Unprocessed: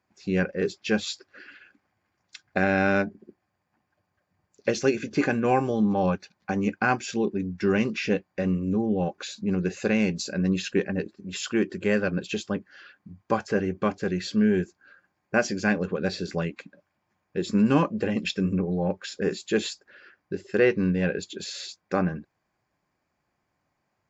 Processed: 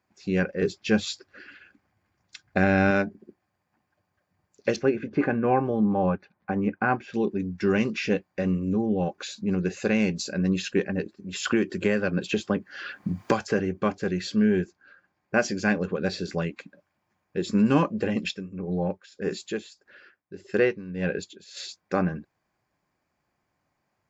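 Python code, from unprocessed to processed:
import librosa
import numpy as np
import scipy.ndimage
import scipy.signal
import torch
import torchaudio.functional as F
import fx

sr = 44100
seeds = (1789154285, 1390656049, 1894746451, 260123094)

y = fx.low_shelf(x, sr, hz=160.0, db=9.0, at=(0.62, 2.91))
y = fx.lowpass(y, sr, hz=1800.0, slope=12, at=(4.76, 7.14))
y = fx.band_squash(y, sr, depth_pct=100, at=(11.45, 13.59))
y = fx.lowpass(y, sr, hz=6300.0, slope=12, at=(14.46, 15.38))
y = fx.tremolo(y, sr, hz=1.7, depth=0.84, at=(18.2, 21.57))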